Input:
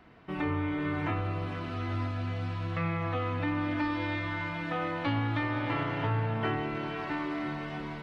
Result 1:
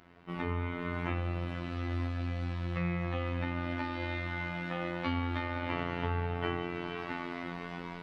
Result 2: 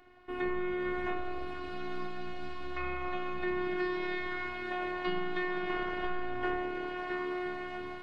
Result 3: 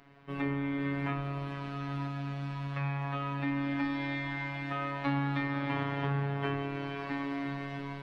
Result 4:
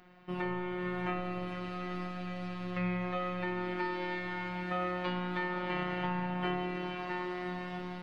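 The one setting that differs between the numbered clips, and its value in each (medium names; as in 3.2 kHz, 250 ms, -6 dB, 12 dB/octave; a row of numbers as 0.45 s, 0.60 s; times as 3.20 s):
robot voice, frequency: 87 Hz, 360 Hz, 140 Hz, 180 Hz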